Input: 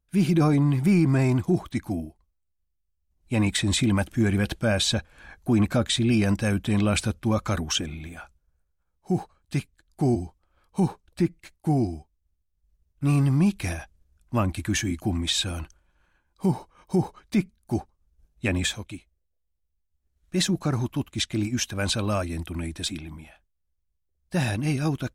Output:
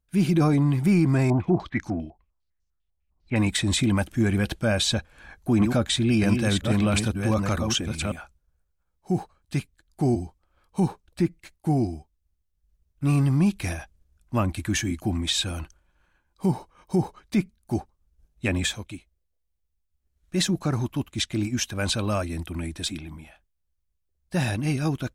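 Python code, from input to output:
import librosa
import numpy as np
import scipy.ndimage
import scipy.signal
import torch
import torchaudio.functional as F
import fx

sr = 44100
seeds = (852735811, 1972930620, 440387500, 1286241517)

y = fx.filter_held_lowpass(x, sr, hz=10.0, low_hz=770.0, high_hz=6100.0, at=(1.3, 3.36))
y = fx.reverse_delay(y, sr, ms=628, wet_db=-5.0, at=(4.98, 8.16))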